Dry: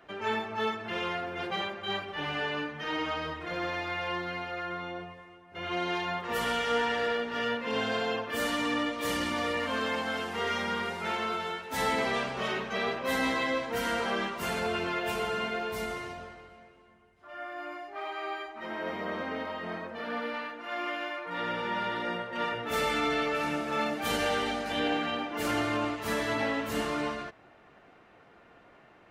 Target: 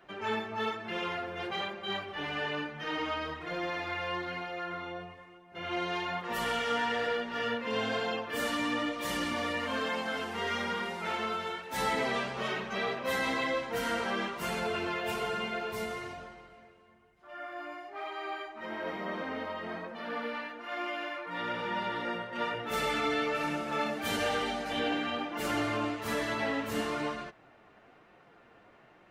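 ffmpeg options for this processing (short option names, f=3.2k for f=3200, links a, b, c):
-af "flanger=delay=5.3:depth=4.4:regen=-41:speed=1.1:shape=sinusoidal,volume=2dB"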